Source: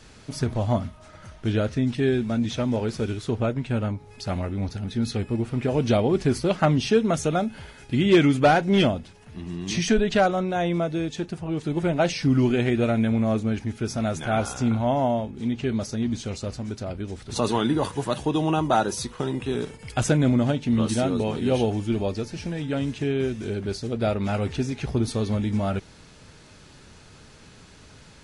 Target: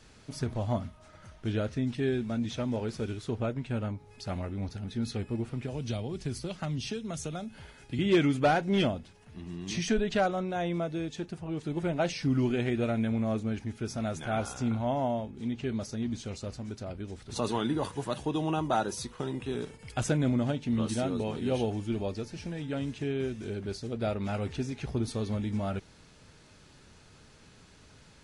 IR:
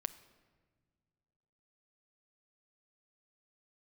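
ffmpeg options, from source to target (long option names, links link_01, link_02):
-filter_complex "[0:a]asettb=1/sr,asplit=3[link_01][link_02][link_03];[link_01]atrim=end=5.494[link_04];[link_02]atrim=start=5.49:end=7.99,asetpts=PTS-STARTPTS,afade=type=in:duration=0.004:curve=qsin,afade=type=out:start_time=2.496:duration=0.004:curve=qsin,acrossover=split=150|3000[link_05][link_06][link_07];[link_06]acompressor=threshold=-29dB:ratio=6[link_08];[link_05][link_08][link_07]amix=inputs=3:normalize=0[link_09];[link_03]atrim=start=7.986[link_10];[link_04][link_09]acrossfade=duration=0.004:curve1=hsin:curve2=qsin[link_11];[link_11][link_10]acrossfade=duration=0.004:curve1=qsin:curve2=hsin,volume=-7dB"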